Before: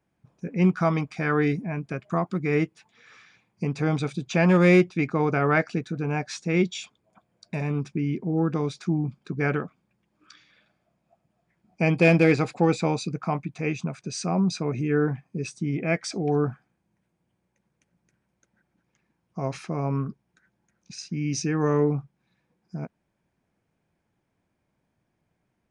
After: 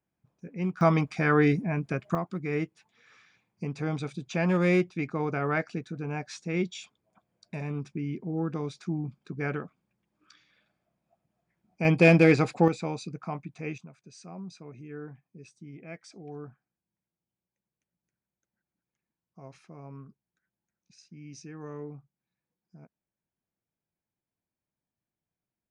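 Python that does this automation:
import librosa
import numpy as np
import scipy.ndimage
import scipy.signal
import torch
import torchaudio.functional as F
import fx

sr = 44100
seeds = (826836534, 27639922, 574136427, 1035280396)

y = fx.gain(x, sr, db=fx.steps((0.0, -10.0), (0.81, 1.0), (2.15, -6.5), (11.85, 0.0), (12.68, -8.0), (13.78, -18.0)))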